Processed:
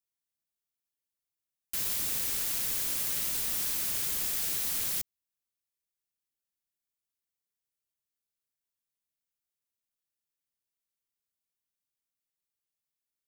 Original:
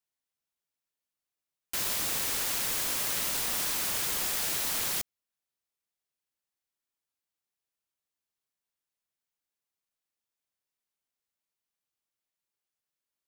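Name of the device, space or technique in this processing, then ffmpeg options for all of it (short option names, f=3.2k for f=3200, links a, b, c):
smiley-face EQ: -af "lowshelf=f=180:g=5,equalizer=f=860:t=o:w=1.7:g=-5,highshelf=f=8.1k:g=6.5,volume=-5dB"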